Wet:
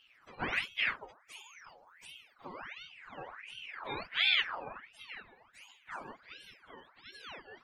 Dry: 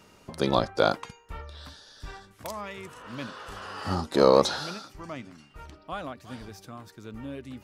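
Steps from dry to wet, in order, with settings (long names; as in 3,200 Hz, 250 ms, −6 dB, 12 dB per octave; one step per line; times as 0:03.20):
frequency axis turned over on the octave scale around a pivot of 530 Hz
ring modulator whose carrier an LFO sweeps 1,800 Hz, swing 65%, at 1.4 Hz
level −6 dB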